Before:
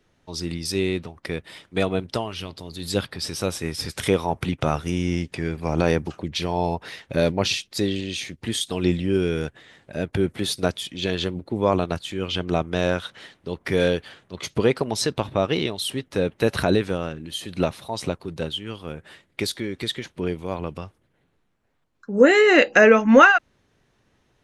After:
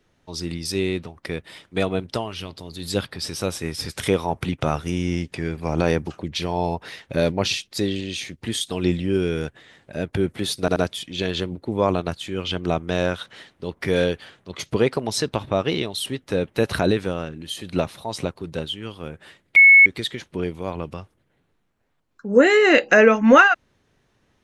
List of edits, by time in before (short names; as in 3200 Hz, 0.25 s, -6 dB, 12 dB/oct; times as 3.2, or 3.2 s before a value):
10.6 stutter 0.08 s, 3 plays
19.4–19.7 bleep 2200 Hz -6.5 dBFS